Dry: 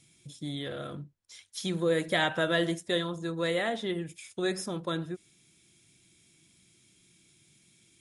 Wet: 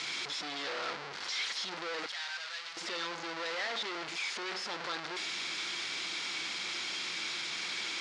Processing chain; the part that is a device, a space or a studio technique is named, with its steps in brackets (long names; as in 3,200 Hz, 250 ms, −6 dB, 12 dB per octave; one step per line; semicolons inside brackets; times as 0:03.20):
home computer beeper (sign of each sample alone; loudspeaker in its box 560–5,300 Hz, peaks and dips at 620 Hz −5 dB, 1,400 Hz +3 dB, 2,100 Hz +3 dB, 4,500 Hz +4 dB)
0:02.06–0:02.77: guitar amp tone stack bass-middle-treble 10-0-10